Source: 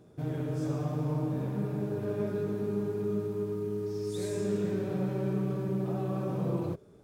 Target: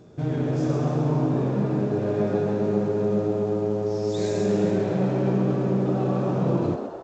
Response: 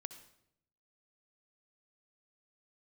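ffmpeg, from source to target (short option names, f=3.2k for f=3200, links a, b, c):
-filter_complex "[0:a]asplit=2[a][b];[b]asplit=6[c][d][e][f][g][h];[c]adelay=131,afreqshift=110,volume=-8dB[i];[d]adelay=262,afreqshift=220,volume=-13.4dB[j];[e]adelay=393,afreqshift=330,volume=-18.7dB[k];[f]adelay=524,afreqshift=440,volume=-24.1dB[l];[g]adelay=655,afreqshift=550,volume=-29.4dB[m];[h]adelay=786,afreqshift=660,volume=-34.8dB[n];[i][j][k][l][m][n]amix=inputs=6:normalize=0[o];[a][o]amix=inputs=2:normalize=0,volume=7.5dB" -ar 16000 -c:a g722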